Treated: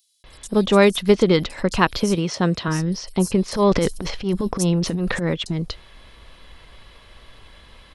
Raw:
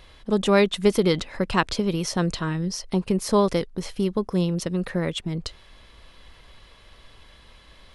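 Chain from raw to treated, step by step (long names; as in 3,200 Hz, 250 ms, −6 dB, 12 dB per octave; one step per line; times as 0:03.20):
0:01.91–0:02.44: high-pass filter 88 Hz
0:03.25–0:05.10: transient designer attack −10 dB, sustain +9 dB
multiband delay without the direct sound highs, lows 240 ms, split 5,800 Hz
level +4 dB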